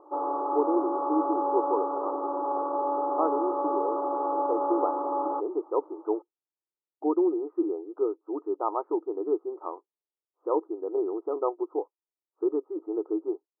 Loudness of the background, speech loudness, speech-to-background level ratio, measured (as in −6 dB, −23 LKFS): −29.0 LKFS, −30.5 LKFS, −1.5 dB